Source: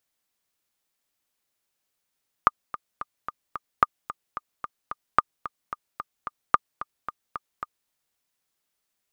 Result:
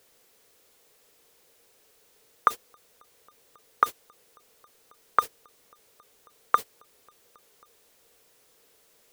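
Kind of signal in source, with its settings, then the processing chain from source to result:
click track 221 BPM, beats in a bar 5, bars 4, 1,210 Hz, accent 15.5 dB −2.5 dBFS
converter with a step at zero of −30.5 dBFS
noise gate −24 dBFS, range −26 dB
parametric band 460 Hz +14.5 dB 0.59 octaves

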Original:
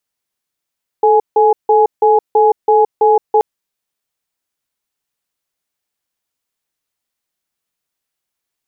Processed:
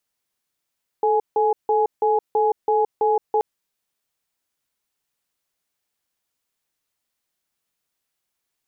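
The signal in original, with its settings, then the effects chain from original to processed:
tone pair in a cadence 436 Hz, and 837 Hz, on 0.17 s, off 0.16 s, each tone −9.5 dBFS 2.38 s
brickwall limiter −12.5 dBFS

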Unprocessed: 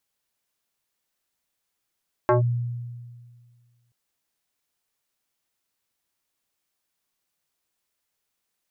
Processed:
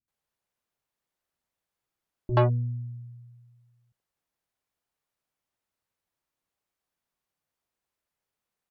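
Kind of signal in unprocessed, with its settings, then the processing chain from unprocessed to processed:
two-operator FM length 1.63 s, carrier 120 Hz, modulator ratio 4.07, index 2.4, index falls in 0.13 s linear, decay 1.85 s, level −14 dB
high-shelf EQ 2,000 Hz −11 dB
harmonic generator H 4 −18 dB, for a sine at −15 dBFS
multiband delay without the direct sound lows, highs 80 ms, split 290 Hz

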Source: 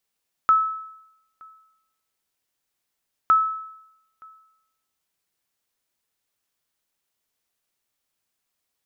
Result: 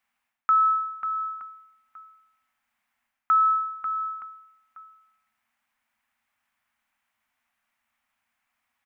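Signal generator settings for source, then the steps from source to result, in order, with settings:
ping with an echo 1,300 Hz, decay 0.82 s, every 2.81 s, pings 2, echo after 0.92 s, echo −29 dB −10.5 dBFS
drawn EQ curve 110 Hz 0 dB, 160 Hz −8 dB, 230 Hz +9 dB, 380 Hz −15 dB, 770 Hz +8 dB, 2,200 Hz +10 dB, 4,200 Hz −6 dB
reversed playback
downward compressor 6 to 1, threshold −19 dBFS
reversed playback
single-tap delay 542 ms −8.5 dB

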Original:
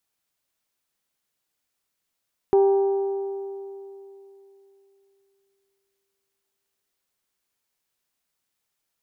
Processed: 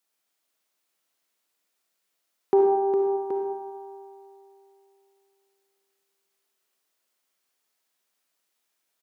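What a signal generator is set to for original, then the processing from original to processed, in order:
struck metal bell, length 5.05 s, lowest mode 393 Hz, decay 3.19 s, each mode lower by 11 dB, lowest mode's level −13 dB
high-pass filter 240 Hz 12 dB per octave
on a send: multi-tap delay 408/775 ms −8/−10 dB
on the sum: comb and all-pass reverb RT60 0.99 s, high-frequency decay 0.75×, pre-delay 15 ms, DRR 2 dB

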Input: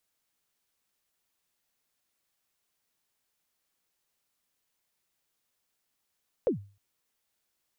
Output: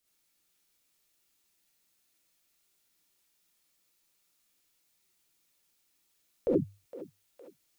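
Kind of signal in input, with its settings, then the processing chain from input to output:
synth kick length 0.31 s, from 560 Hz, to 100 Hz, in 114 ms, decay 0.37 s, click off, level −19 dB
parametric band 980 Hz −6 dB 1.8 octaves
feedback echo with a high-pass in the loop 462 ms, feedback 76%, high-pass 830 Hz, level −9.5 dB
reverb whose tail is shaped and stops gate 90 ms rising, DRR −4.5 dB

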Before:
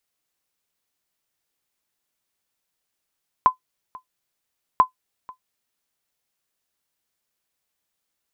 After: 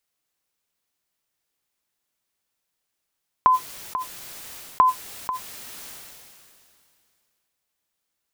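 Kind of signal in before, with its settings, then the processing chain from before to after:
ping with an echo 1,020 Hz, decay 0.11 s, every 1.34 s, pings 2, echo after 0.49 s, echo −24 dB −5 dBFS
level that may fall only so fast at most 24 dB per second

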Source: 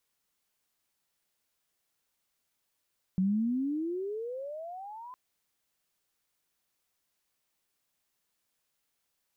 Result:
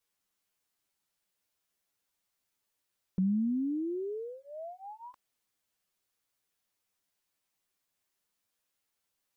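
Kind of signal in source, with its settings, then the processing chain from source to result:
pitch glide with a swell sine, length 1.96 s, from 182 Hz, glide +30 semitones, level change −19 dB, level −23.5 dB
flanger swept by the level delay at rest 10.6 ms, full sweep at −33 dBFS

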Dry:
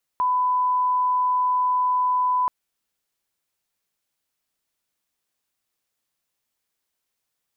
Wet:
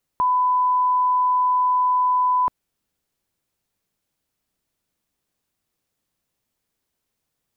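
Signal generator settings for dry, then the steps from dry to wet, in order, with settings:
line-up tone −18 dBFS 2.28 s
low-shelf EQ 500 Hz +11.5 dB

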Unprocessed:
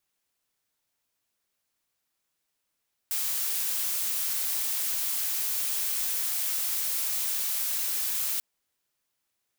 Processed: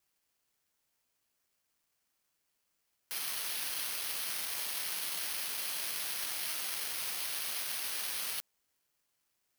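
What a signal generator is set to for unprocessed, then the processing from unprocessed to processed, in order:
noise blue, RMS −29 dBFS 5.29 s
bad sample-rate conversion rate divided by 6×, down filtered, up zero stuff

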